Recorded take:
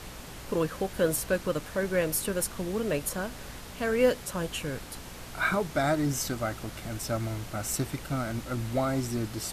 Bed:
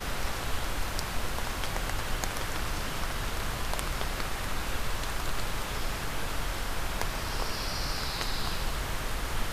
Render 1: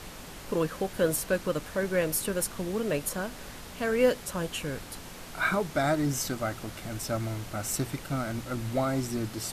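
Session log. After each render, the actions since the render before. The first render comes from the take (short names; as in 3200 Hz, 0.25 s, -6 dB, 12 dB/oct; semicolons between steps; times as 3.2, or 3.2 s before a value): de-hum 60 Hz, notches 2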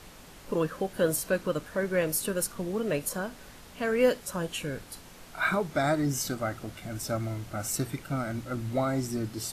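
noise print and reduce 6 dB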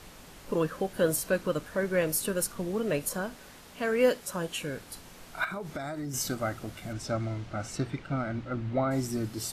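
3.35–4.87 low shelf 99 Hz -8.5 dB; 5.44–6.14 compressor 10:1, threshold -32 dBFS; 6.92–8.9 LPF 6200 Hz -> 2700 Hz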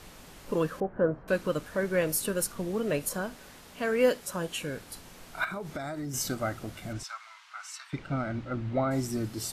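0.8–1.28 LPF 1500 Hz 24 dB/oct; 7.03–7.93 elliptic high-pass 980 Hz, stop band 60 dB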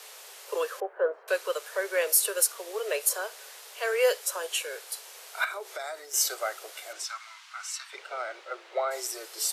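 steep high-pass 400 Hz 72 dB/oct; high shelf 2500 Hz +8.5 dB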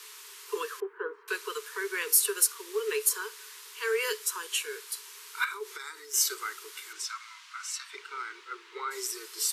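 Chebyshev band-stop 430–950 Hz, order 3; dynamic EQ 430 Hz, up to +6 dB, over -51 dBFS, Q 5.6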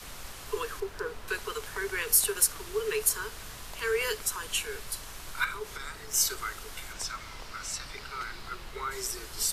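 add bed -13 dB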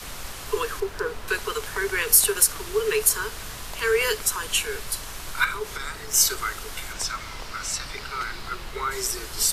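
gain +7 dB; limiter -3 dBFS, peak gain reduction 2 dB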